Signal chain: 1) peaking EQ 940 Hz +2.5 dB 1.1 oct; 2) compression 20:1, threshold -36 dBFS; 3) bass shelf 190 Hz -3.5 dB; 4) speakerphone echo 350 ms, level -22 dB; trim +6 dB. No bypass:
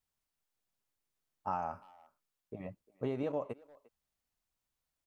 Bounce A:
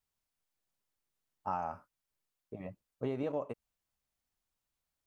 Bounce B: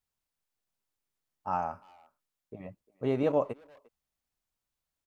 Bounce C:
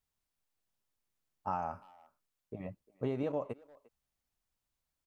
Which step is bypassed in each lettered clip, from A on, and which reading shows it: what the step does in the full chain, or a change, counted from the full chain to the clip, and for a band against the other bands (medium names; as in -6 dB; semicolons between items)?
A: 4, echo-to-direct -31.0 dB to none; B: 2, mean gain reduction 4.5 dB; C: 3, 125 Hz band +2.0 dB